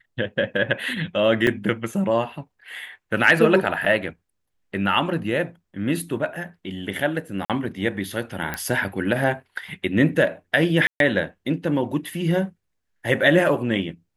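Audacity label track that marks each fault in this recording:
1.470000	1.470000	drop-out 2.3 ms
3.850000	3.850000	drop-out 4.5 ms
7.450000	7.500000	drop-out 47 ms
8.540000	8.540000	click −11 dBFS
10.870000	11.000000	drop-out 132 ms

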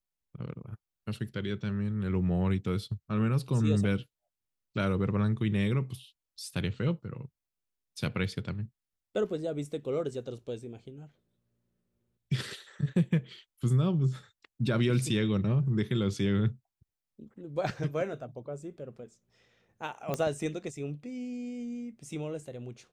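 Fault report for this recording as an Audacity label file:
20.140000	20.140000	click −17 dBFS

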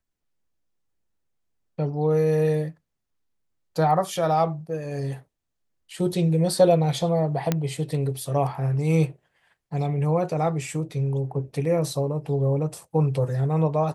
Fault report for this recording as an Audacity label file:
7.520000	7.520000	click −8 dBFS

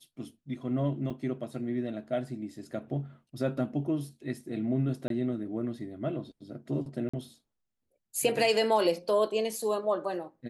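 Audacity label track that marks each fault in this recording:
1.100000	1.100000	drop-out 4 ms
5.080000	5.100000	drop-out 22 ms
7.090000	7.130000	drop-out 45 ms

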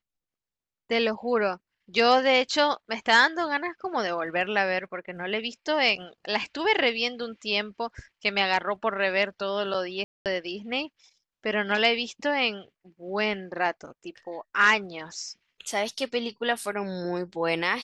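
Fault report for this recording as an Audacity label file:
10.040000	10.260000	drop-out 218 ms

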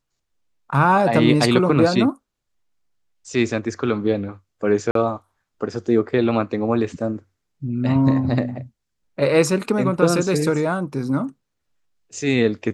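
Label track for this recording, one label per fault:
4.910000	4.950000	drop-out 43 ms

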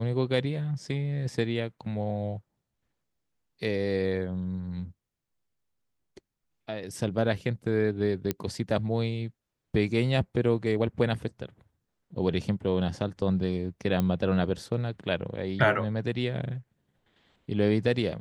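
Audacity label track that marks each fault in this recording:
8.310000	8.310000	click −13 dBFS
14.000000	14.000000	click −15 dBFS

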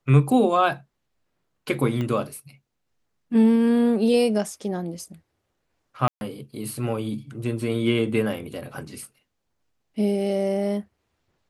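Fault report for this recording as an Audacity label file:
2.010000	2.010000	click −18 dBFS
6.080000	6.210000	drop-out 131 ms

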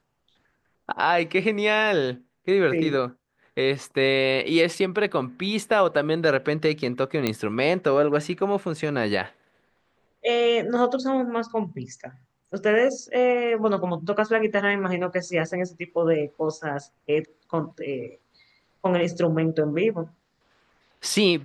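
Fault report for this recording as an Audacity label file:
7.270000	7.270000	click −9 dBFS

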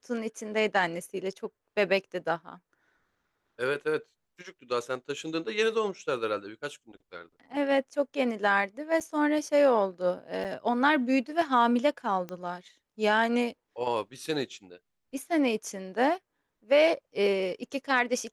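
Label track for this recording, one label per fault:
9.000000	9.010000	drop-out 7.1 ms
10.440000	10.450000	drop-out 7.5 ms
12.290000	12.290000	click −23 dBFS

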